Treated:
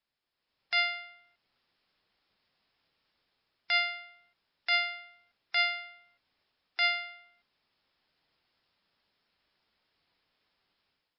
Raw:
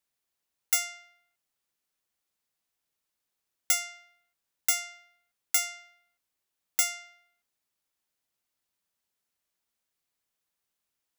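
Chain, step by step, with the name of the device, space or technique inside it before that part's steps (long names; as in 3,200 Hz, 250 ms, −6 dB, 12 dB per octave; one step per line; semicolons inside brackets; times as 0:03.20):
low-bitrate web radio (automatic gain control gain up to 11 dB; brickwall limiter −12 dBFS, peak gain reduction 9.5 dB; level +1.5 dB; MP3 24 kbit/s 12,000 Hz)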